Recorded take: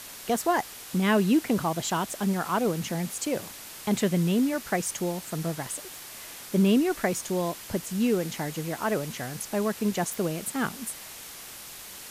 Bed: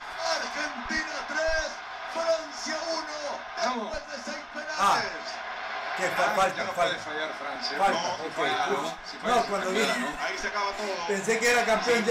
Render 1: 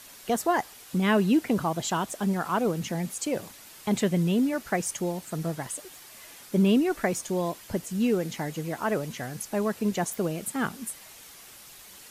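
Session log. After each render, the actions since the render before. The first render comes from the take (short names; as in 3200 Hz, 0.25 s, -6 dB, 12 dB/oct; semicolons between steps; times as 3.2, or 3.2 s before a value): denoiser 7 dB, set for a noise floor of -43 dBFS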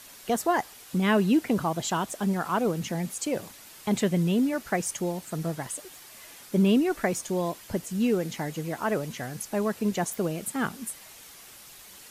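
nothing audible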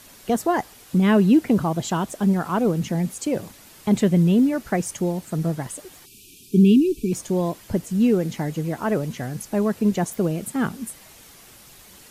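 6.06–7.12 spectral delete 440–2300 Hz; low shelf 460 Hz +9 dB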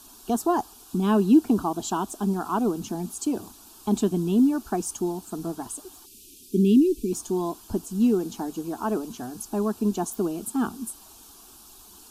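fixed phaser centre 540 Hz, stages 6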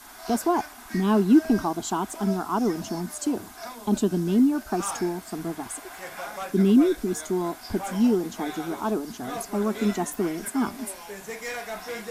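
add bed -11 dB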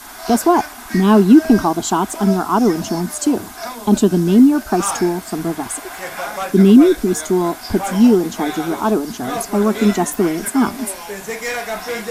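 gain +10 dB; limiter -1 dBFS, peak gain reduction 2.5 dB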